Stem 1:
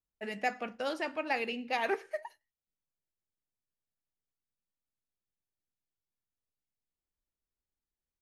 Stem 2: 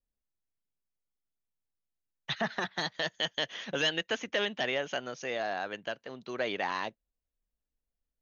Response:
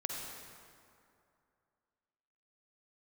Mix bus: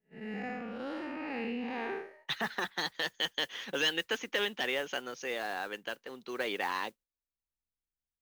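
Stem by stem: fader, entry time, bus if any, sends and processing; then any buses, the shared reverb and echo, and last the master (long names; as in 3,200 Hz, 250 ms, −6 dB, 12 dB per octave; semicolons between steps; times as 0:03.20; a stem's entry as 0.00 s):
+0.5 dB, 0.00 s, no send, spectrum smeared in time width 210 ms; bass and treble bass +3 dB, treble −12 dB; automatic ducking −12 dB, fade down 0.30 s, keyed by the second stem
−0.5 dB, 0.00 s, no send, high-pass filter 340 Hz 12 dB per octave; noise that follows the level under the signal 23 dB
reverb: not used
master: low-shelf EQ 240 Hz +8.5 dB; noise gate −55 dBFS, range −12 dB; parametric band 640 Hz −12 dB 0.22 octaves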